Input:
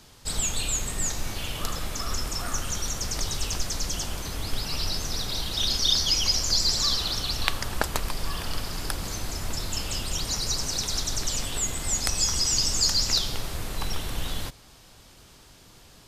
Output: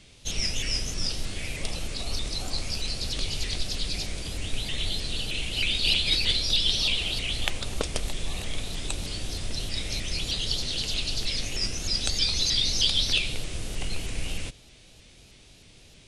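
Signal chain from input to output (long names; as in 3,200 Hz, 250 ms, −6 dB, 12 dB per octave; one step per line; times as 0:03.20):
flat-topped bell 1,400 Hz −8 dB
formants moved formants −5 semitones
pitch modulation by a square or saw wave saw up 3.2 Hz, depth 160 cents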